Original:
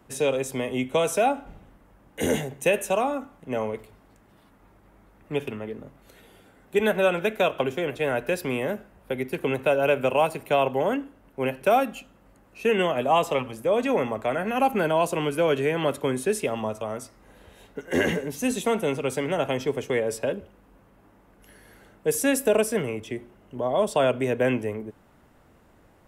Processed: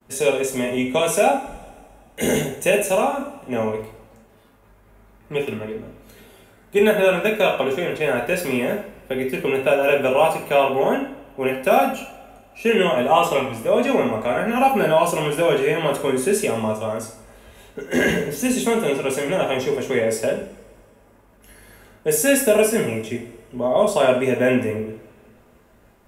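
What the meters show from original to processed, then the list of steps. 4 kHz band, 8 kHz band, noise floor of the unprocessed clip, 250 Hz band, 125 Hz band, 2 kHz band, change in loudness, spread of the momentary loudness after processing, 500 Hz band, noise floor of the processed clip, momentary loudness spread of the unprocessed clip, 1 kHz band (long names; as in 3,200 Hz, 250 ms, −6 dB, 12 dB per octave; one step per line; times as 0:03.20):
+5.5 dB, +7.5 dB, −58 dBFS, +5.0 dB, +3.0 dB, +5.5 dB, +5.0 dB, 12 LU, +5.0 dB, −53 dBFS, 12 LU, +4.5 dB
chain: hum removal 98.65 Hz, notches 31
downward expander −54 dBFS
high-shelf EQ 8,100 Hz +4.5 dB
coupled-rooms reverb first 0.49 s, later 2.2 s, from −21 dB, DRR −0.5 dB
level +2 dB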